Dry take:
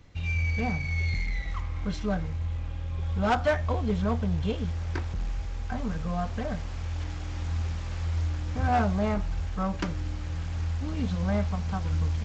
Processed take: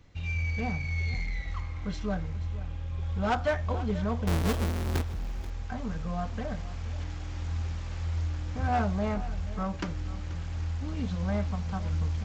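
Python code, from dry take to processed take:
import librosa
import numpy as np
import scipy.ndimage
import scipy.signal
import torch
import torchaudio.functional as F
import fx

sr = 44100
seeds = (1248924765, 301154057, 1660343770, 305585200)

y = fx.halfwave_hold(x, sr, at=(4.27, 5.02))
y = y + 10.0 ** (-16.0 / 20.0) * np.pad(y, (int(484 * sr / 1000.0), 0))[:len(y)]
y = y * 10.0 ** (-3.0 / 20.0)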